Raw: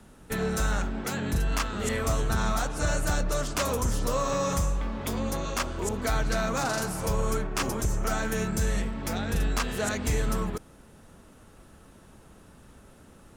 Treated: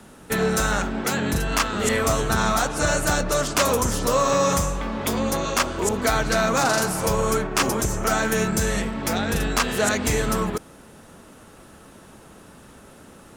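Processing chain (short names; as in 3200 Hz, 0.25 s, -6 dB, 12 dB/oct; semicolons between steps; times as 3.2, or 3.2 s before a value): low shelf 99 Hz -12 dB; gain +8.5 dB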